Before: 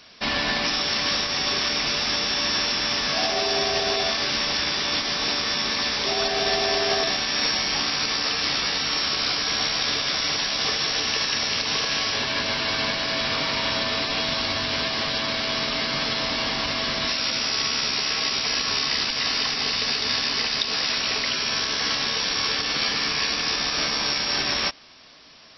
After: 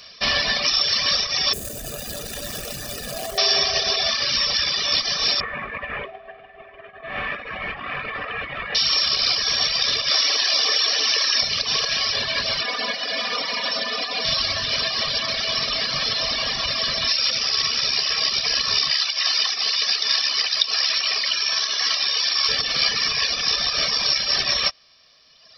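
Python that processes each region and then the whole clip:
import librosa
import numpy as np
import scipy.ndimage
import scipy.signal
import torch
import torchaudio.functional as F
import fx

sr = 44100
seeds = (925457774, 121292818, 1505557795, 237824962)

y = fx.chain(x, sr, fx.median_filter(points=41),
    fx.high_shelf(hz=3500.0, db=9.5),
    fx.env_flatten(amount_pct=50), at=(1.53, 3.38))
y = fx.chain(y, sr, fx.steep_lowpass(hz=2400.0, slope=36),
    fx.over_compress(threshold_db=-31.0, ratio=-0.5), at=(5.4, 8.75))
y = fx.chain(y, sr, fx.steep_highpass(hz=240.0, slope=72),
    fx.env_flatten(amount_pct=100), at=(10.11, 11.41))
y = fx.chain(y, sr, fx.highpass(hz=240.0, slope=12),
    fx.high_shelf(hz=2600.0, db=-7.5),
    fx.comb(ms=4.1, depth=0.78), at=(12.63, 14.25))
y = fx.chain(y, sr, fx.highpass(hz=380.0, slope=12),
    fx.peak_eq(hz=480.0, db=-6.0, octaves=0.65), at=(18.91, 22.49))
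y = fx.dereverb_blind(y, sr, rt60_s=1.9)
y = fx.high_shelf(y, sr, hz=3500.0, db=10.5)
y = y + 0.54 * np.pad(y, (int(1.7 * sr / 1000.0), 0))[:len(y)]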